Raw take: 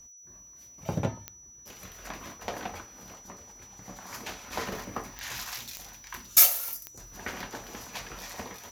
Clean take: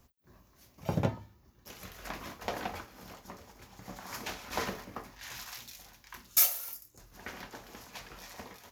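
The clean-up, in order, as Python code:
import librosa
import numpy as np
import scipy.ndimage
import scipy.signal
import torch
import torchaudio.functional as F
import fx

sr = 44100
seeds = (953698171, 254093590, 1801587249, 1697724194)

y = fx.fix_declick_ar(x, sr, threshold=10.0)
y = fx.notch(y, sr, hz=5900.0, q=30.0)
y = fx.fix_level(y, sr, at_s=4.72, step_db=-6.5)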